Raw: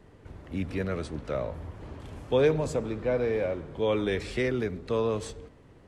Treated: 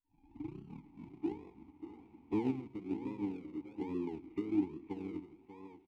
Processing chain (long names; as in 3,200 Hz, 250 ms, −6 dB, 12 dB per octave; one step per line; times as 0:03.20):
turntable start at the beginning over 1.66 s
low-pass filter 3,100 Hz 24 dB per octave
phase-vocoder pitch shift with formants kept −3 semitones
low-shelf EQ 340 Hz +3.5 dB
single-tap delay 586 ms −9 dB
on a send at −21 dB: convolution reverb RT60 0.45 s, pre-delay 5 ms
on the sum: treble cut that deepens with the level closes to 340 Hz, closed at −24 dBFS
in parallel at −4 dB: sample-and-hold swept by an LFO 42×, swing 60% 1.2 Hz
on the sum: formant filter u
expander for the loud parts 1.5 to 1, over −52 dBFS
level +3 dB